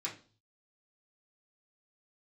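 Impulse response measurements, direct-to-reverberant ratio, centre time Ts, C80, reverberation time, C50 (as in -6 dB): -6.5 dB, 19 ms, 16.5 dB, 0.40 s, 11.0 dB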